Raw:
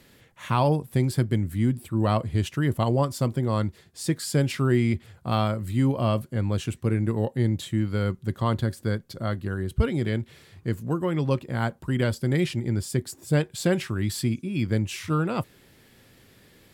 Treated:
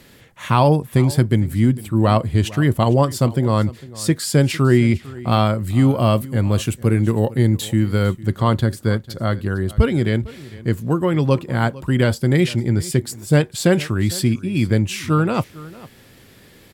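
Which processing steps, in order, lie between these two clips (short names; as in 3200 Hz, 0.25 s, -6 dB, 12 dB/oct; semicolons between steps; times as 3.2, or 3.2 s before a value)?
5.88–8.21 high shelf 9700 Hz +10.5 dB; echo 0.453 s -19.5 dB; gain +7.5 dB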